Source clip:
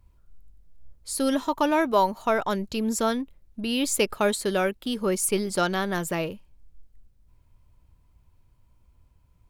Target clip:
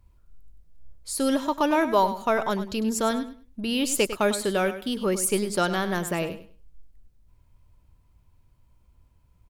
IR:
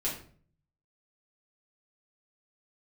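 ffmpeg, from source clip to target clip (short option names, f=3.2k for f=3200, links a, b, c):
-af "aecho=1:1:101|202|303:0.251|0.0527|0.0111"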